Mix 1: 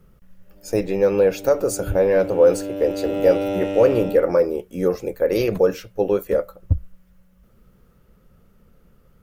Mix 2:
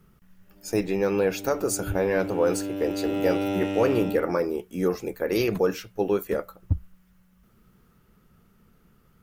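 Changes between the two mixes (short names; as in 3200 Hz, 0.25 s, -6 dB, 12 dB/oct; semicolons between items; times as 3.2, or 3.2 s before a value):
speech: add low shelf 90 Hz -10 dB; master: add bell 540 Hz -11 dB 0.46 oct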